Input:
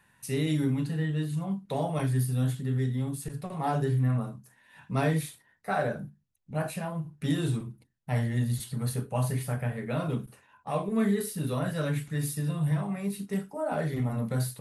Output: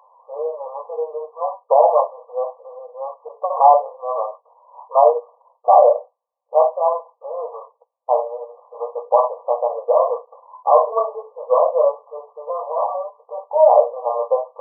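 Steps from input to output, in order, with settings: brick-wall FIR band-pass 460–1200 Hz; maximiser +21.5 dB; gain -1 dB

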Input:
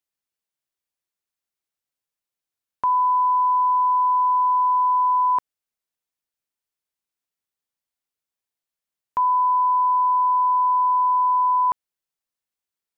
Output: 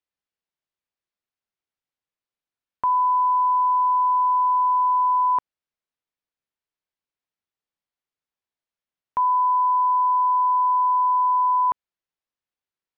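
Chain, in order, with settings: air absorption 140 m

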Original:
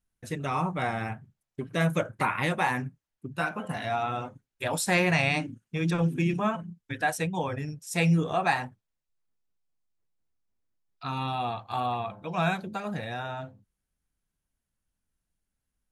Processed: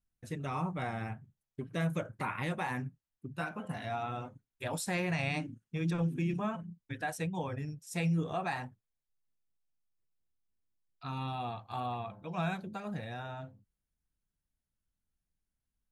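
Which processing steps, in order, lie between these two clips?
low shelf 290 Hz +5.5 dB; limiter -16 dBFS, peak gain reduction 4.5 dB; gain -8.5 dB

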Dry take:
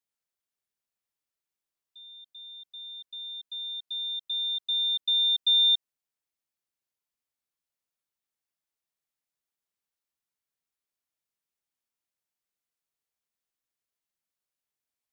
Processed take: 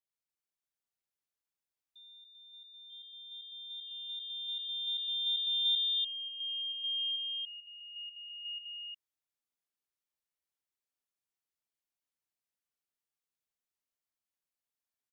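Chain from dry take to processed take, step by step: echoes that change speed 0.702 s, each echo -2 st, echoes 2, each echo -6 dB; echo 0.291 s -3.5 dB; gain -7.5 dB

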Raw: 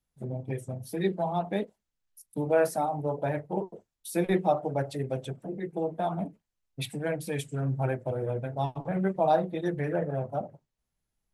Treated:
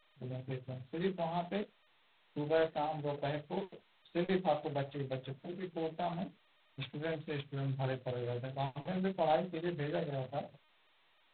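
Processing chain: gain -7.5 dB; G.726 16 kbps 8000 Hz

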